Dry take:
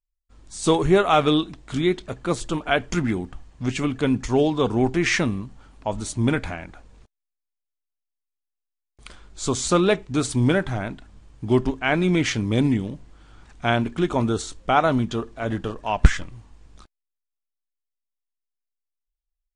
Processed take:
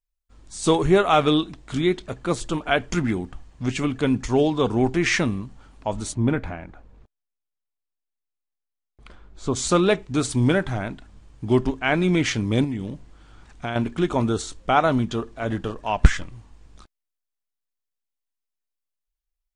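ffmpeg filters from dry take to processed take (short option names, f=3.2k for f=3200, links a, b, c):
-filter_complex "[0:a]asplit=3[a][b][c];[a]afade=t=out:st=6.13:d=0.02[d];[b]lowpass=f=1.3k:p=1,afade=t=in:st=6.13:d=0.02,afade=t=out:st=9.55:d=0.02[e];[c]afade=t=in:st=9.55:d=0.02[f];[d][e][f]amix=inputs=3:normalize=0,asettb=1/sr,asplit=3[g][h][i];[g]atrim=end=12.644[j];[h]atrim=start=12.64:end=13.76,asetpts=PTS-STARTPTS,afade=t=in:d=0.004:c=qsin,afade=t=out:st=1.116:d=0.004:c=qsin,acompressor=threshold=-24dB:ratio=5:attack=3.2:release=140:knee=1:detection=peak[k];[i]atrim=start=13.756[l];[j][k]acrossfade=d=0.004:c1=hsin:c2=qsin[m];[m][l]acrossfade=d=0.004:c1=qsin:c2=hsin"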